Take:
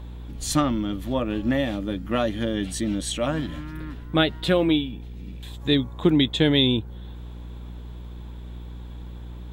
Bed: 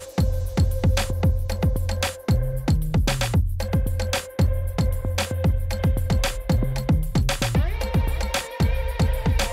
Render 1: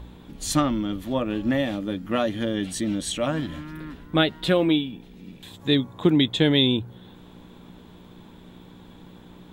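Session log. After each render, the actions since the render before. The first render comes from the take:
hum removal 60 Hz, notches 2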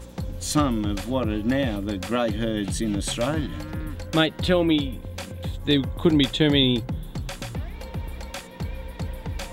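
mix in bed −10.5 dB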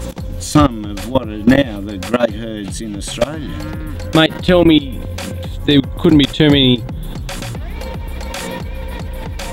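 output level in coarse steps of 22 dB
boost into a limiter +20 dB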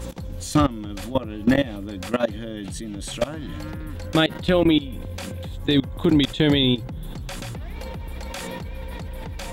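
level −8 dB

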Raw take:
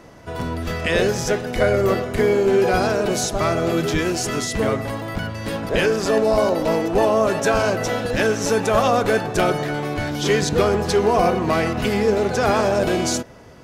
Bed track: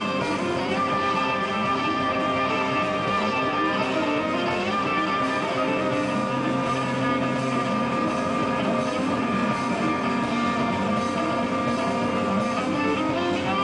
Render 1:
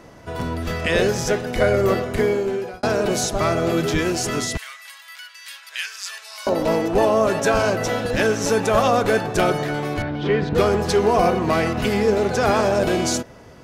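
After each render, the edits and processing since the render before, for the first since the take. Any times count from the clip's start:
0:02.13–0:02.83: fade out
0:04.57–0:06.47: Bessel high-pass filter 2,400 Hz, order 4
0:10.02–0:10.55: high-frequency loss of the air 390 metres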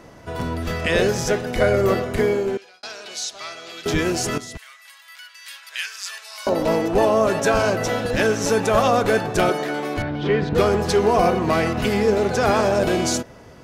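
0:02.57–0:03.86: resonant band-pass 4,100 Hz, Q 1.3
0:04.38–0:05.64: fade in, from −12.5 dB
0:09.49–0:09.97: high-pass filter 200 Hz 24 dB per octave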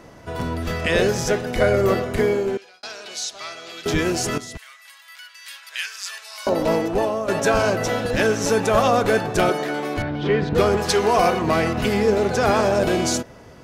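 0:06.75–0:07.28: fade out, to −11 dB
0:10.77–0:11.42: tilt shelving filter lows −4.5 dB, about 660 Hz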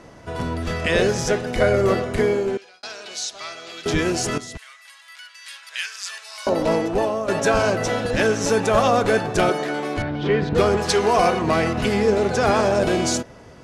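low-pass filter 11,000 Hz 24 dB per octave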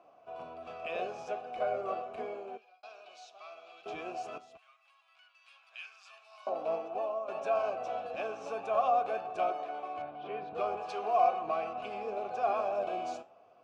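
formant filter a
flanger 0.42 Hz, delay 2.8 ms, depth 9.4 ms, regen +80%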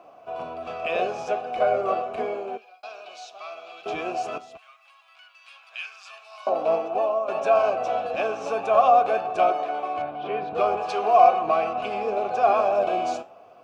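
level +11 dB

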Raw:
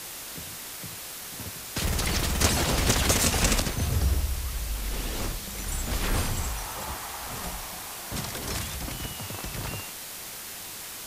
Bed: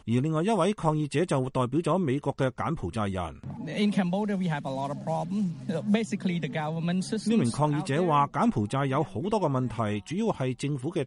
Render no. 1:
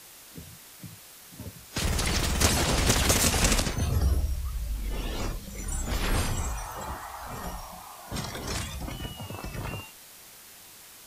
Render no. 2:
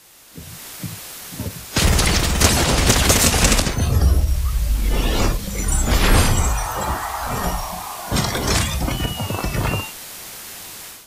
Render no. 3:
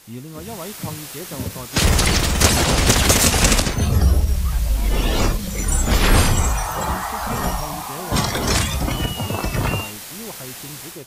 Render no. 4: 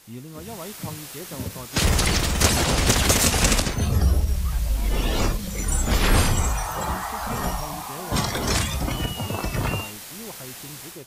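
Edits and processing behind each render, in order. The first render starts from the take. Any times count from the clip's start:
noise reduction from a noise print 10 dB
automatic gain control gain up to 14 dB; every ending faded ahead of time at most 300 dB per second
mix in bed −8.5 dB
level −4 dB

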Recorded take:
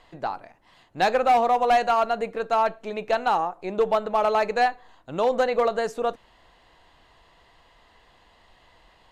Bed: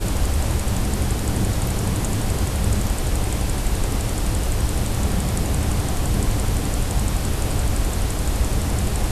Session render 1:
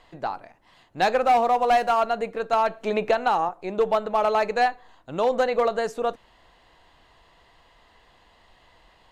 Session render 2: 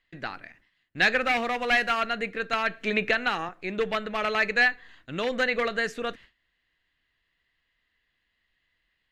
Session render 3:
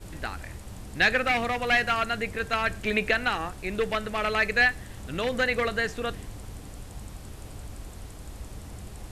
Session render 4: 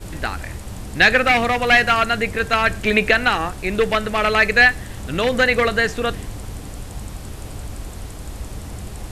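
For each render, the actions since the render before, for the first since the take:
0:01.21–0:02.01: running median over 9 samples; 0:02.53–0:03.49: multiband upward and downward compressor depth 100%
noise gate with hold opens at −44 dBFS; drawn EQ curve 270 Hz 0 dB, 890 Hz −13 dB, 1,800 Hz +10 dB, 8,600 Hz −3 dB
mix in bed −19.5 dB
level +9 dB; brickwall limiter −1 dBFS, peak gain reduction 1 dB

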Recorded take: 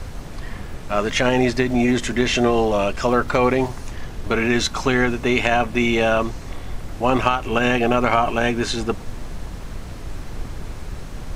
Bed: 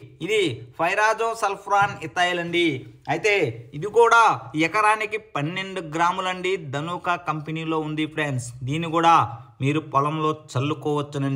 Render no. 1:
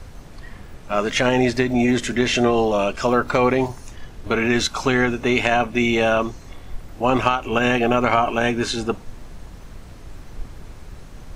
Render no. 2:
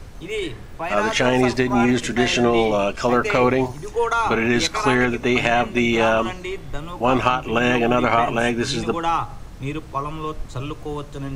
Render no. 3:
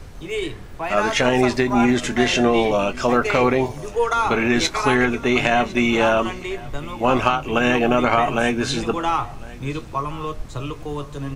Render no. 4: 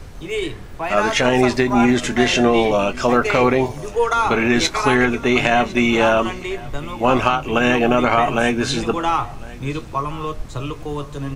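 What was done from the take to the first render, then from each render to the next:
noise reduction from a noise print 7 dB
mix in bed −5.5 dB
double-tracking delay 21 ms −13 dB; single-tap delay 1,054 ms −21 dB
level +2 dB; brickwall limiter −2 dBFS, peak gain reduction 1.5 dB

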